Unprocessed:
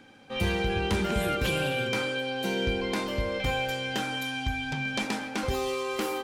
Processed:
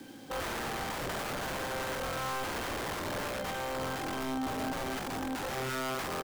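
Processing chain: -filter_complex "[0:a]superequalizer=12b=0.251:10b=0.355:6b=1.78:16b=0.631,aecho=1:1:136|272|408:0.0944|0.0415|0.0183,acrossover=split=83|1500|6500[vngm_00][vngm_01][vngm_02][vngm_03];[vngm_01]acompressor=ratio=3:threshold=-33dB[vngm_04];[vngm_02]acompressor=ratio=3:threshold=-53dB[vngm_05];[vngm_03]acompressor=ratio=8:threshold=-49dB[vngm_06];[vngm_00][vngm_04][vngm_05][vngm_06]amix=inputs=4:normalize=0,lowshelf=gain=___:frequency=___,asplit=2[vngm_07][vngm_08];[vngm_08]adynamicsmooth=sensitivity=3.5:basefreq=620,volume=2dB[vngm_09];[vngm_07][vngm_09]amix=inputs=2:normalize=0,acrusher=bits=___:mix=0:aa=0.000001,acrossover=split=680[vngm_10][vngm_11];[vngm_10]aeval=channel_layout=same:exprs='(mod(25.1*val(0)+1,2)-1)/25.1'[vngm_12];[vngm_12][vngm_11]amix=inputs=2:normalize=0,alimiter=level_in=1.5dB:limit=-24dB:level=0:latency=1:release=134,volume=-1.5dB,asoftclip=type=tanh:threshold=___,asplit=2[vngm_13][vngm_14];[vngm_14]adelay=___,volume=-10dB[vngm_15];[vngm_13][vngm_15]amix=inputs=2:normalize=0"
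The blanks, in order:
-11, 79, 8, -32dB, 46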